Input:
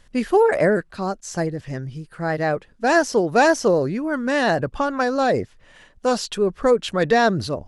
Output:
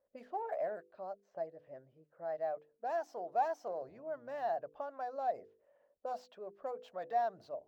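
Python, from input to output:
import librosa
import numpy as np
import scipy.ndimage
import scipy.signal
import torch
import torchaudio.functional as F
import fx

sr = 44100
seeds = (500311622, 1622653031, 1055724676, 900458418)

y = fx.octave_divider(x, sr, octaves=1, level_db=-5.0, at=(3.8, 4.53))
y = fx.env_lowpass(y, sr, base_hz=1200.0, full_db=-16.5)
y = scipy.signal.lfilter([1.0, -0.8], [1.0], y)
y = fx.hum_notches(y, sr, base_hz=50, count=10)
y = fx.dynamic_eq(y, sr, hz=400.0, q=0.76, threshold_db=-44.0, ratio=4.0, max_db=-4)
y = 10.0 ** (-26.0 / 20.0) * np.tanh(y / 10.0 ** (-26.0 / 20.0))
y = fx.auto_wah(y, sr, base_hz=550.0, top_hz=1200.0, q=6.6, full_db=-21.0, direction='up')
y = np.interp(np.arange(len(y)), np.arange(len(y))[::2], y[::2])
y = F.gain(torch.from_numpy(y), 7.0).numpy()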